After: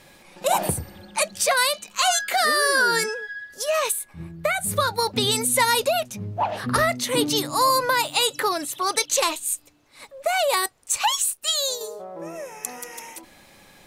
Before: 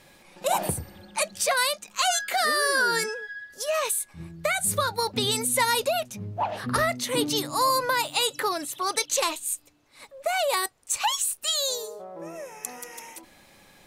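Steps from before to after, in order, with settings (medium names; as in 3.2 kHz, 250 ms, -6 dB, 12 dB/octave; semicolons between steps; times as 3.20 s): 1.68–2.13 s: de-hum 213.4 Hz, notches 21; 3.92–4.76 s: peaking EQ 6.3 kHz -7.5 dB 1.9 oct; 11.30–11.81 s: upward expansion 1.5:1, over -38 dBFS; trim +3.5 dB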